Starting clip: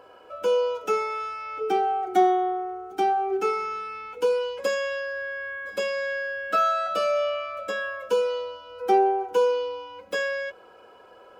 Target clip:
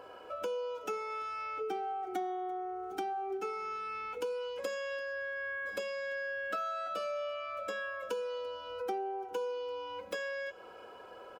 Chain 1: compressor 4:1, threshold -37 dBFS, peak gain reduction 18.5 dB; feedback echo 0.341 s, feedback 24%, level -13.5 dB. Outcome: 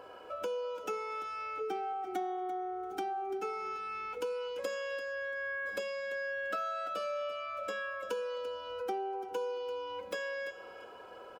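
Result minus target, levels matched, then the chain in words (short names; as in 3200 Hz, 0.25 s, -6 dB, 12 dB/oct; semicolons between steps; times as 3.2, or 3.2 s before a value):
echo-to-direct +9.5 dB
compressor 4:1, threshold -37 dBFS, peak gain reduction 18.5 dB; feedback echo 0.341 s, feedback 24%, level -23 dB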